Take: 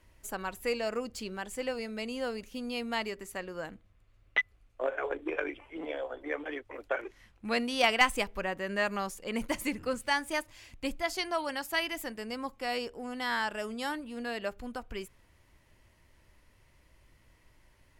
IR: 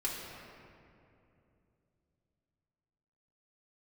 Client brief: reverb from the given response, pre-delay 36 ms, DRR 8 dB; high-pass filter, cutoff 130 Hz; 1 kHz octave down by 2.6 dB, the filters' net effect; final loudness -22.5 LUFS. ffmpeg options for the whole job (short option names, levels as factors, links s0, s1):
-filter_complex "[0:a]highpass=130,equalizer=f=1000:t=o:g=-3.5,asplit=2[s0][s1];[1:a]atrim=start_sample=2205,adelay=36[s2];[s1][s2]afir=irnorm=-1:irlink=0,volume=0.251[s3];[s0][s3]amix=inputs=2:normalize=0,volume=3.76"